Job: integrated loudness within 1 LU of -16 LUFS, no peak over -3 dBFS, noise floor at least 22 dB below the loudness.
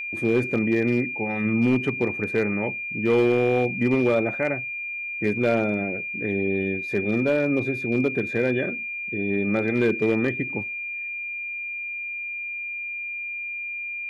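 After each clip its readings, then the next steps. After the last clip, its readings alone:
clipped samples 0.5%; clipping level -13.5 dBFS; steady tone 2.4 kHz; tone level -29 dBFS; loudness -24.5 LUFS; peak level -13.5 dBFS; loudness target -16.0 LUFS
-> clip repair -13.5 dBFS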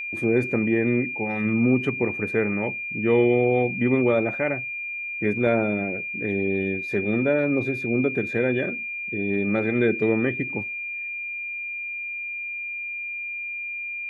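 clipped samples 0.0%; steady tone 2.4 kHz; tone level -29 dBFS
-> band-stop 2.4 kHz, Q 30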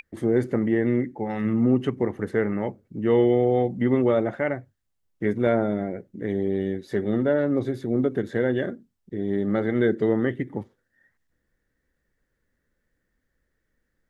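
steady tone not found; loudness -24.5 LUFS; peak level -9.0 dBFS; loudness target -16.0 LUFS
-> trim +8.5 dB; peak limiter -3 dBFS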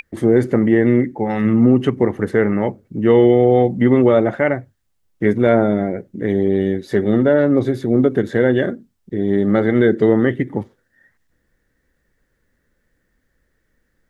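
loudness -16.5 LUFS; peak level -3.0 dBFS; noise floor -68 dBFS

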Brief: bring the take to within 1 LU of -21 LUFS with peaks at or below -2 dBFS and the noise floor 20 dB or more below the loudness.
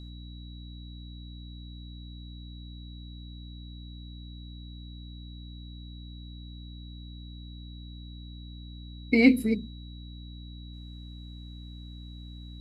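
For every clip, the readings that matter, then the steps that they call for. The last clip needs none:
hum 60 Hz; highest harmonic 300 Hz; hum level -41 dBFS; steady tone 3.9 kHz; tone level -52 dBFS; loudness -35.0 LUFS; peak level -7.5 dBFS; loudness target -21.0 LUFS
-> de-hum 60 Hz, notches 5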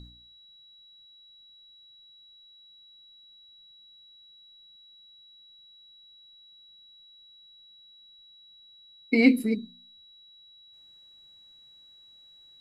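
hum not found; steady tone 3.9 kHz; tone level -52 dBFS
-> band-stop 3.9 kHz, Q 30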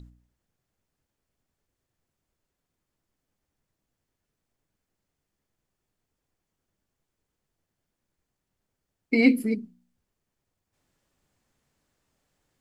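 steady tone not found; loudness -23.5 LUFS; peak level -7.0 dBFS; loudness target -21.0 LUFS
-> trim +2.5 dB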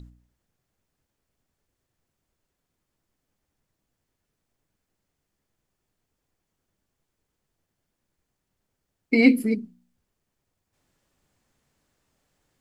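loudness -21.0 LUFS; peak level -4.5 dBFS; noise floor -81 dBFS

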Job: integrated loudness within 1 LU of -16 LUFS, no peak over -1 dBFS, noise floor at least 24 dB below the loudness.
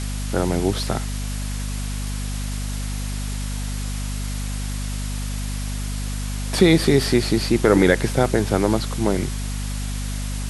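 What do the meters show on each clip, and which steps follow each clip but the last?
hum 50 Hz; highest harmonic 250 Hz; hum level -24 dBFS; noise floor -27 dBFS; noise floor target -47 dBFS; loudness -23.0 LUFS; peak level -1.5 dBFS; loudness target -16.0 LUFS
-> hum notches 50/100/150/200/250 Hz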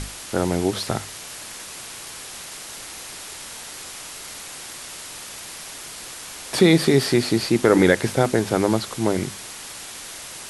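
hum not found; noise floor -37 dBFS; noise floor target -45 dBFS
-> noise reduction 8 dB, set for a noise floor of -37 dBFS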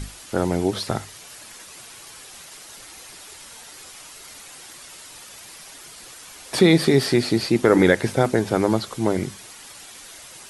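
noise floor -43 dBFS; noise floor target -45 dBFS
-> noise reduction 6 dB, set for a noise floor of -43 dBFS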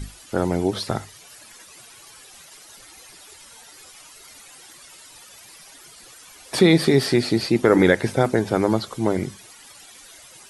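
noise floor -47 dBFS; loudness -20.5 LUFS; peak level -1.5 dBFS; loudness target -16.0 LUFS
-> trim +4.5 dB; peak limiter -1 dBFS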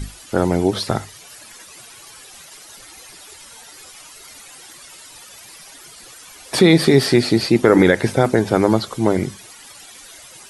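loudness -16.5 LUFS; peak level -1.0 dBFS; noise floor -42 dBFS

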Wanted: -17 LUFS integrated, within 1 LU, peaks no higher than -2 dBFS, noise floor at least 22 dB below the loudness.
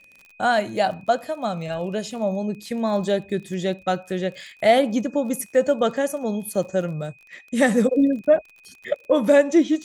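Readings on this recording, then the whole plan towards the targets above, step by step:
tick rate 35 per s; steady tone 2.5 kHz; tone level -50 dBFS; loudness -22.5 LUFS; peak level -5.0 dBFS; loudness target -17.0 LUFS
-> de-click; band-stop 2.5 kHz, Q 30; trim +5.5 dB; peak limiter -2 dBFS

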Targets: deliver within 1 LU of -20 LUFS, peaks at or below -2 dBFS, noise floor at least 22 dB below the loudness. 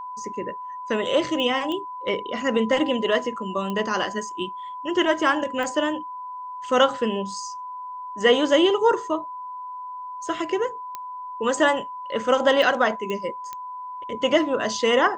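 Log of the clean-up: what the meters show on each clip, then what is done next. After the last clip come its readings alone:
clicks found 8; steady tone 1 kHz; tone level -32 dBFS; loudness -23.5 LUFS; peak level -6.5 dBFS; loudness target -20.0 LUFS
-> de-click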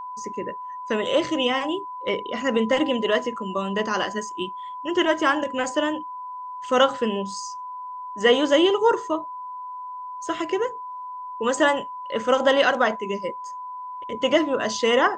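clicks found 0; steady tone 1 kHz; tone level -32 dBFS
-> band-stop 1 kHz, Q 30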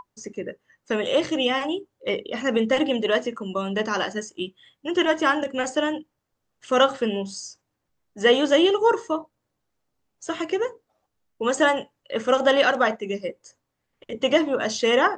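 steady tone not found; loudness -23.0 LUFS; peak level -6.5 dBFS; loudness target -20.0 LUFS
-> trim +3 dB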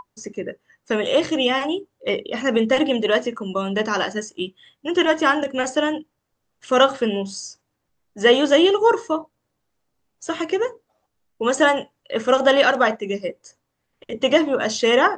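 loudness -20.0 LUFS; peak level -3.5 dBFS; noise floor -76 dBFS

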